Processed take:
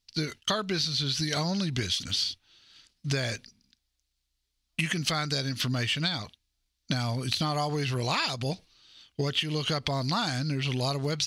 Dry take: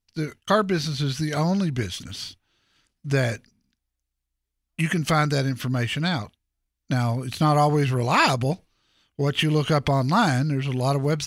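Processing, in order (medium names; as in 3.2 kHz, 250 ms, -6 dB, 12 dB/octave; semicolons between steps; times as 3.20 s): peaking EQ 4.3 kHz +13.5 dB 1.5 oct; compression 10:1, threshold -25 dBFS, peak gain reduction 17 dB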